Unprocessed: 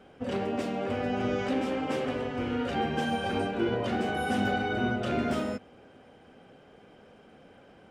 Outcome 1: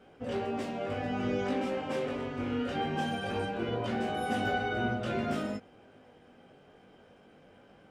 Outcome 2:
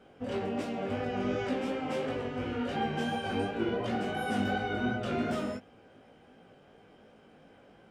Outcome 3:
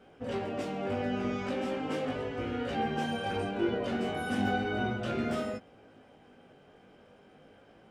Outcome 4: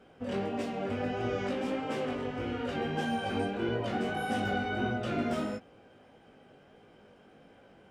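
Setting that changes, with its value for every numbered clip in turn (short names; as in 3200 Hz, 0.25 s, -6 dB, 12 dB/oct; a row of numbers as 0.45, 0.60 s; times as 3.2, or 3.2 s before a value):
chorus, rate: 0.22, 2.8, 0.37, 1.6 Hz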